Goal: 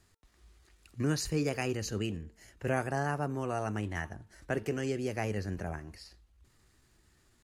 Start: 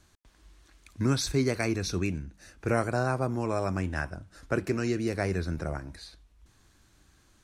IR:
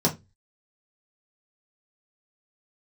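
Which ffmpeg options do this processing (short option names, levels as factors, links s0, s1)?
-af "bandreject=f=401.9:t=h:w=4,bandreject=f=803.8:t=h:w=4,bandreject=f=1205.7:t=h:w=4,asetrate=49501,aresample=44100,atempo=0.890899,volume=0.596"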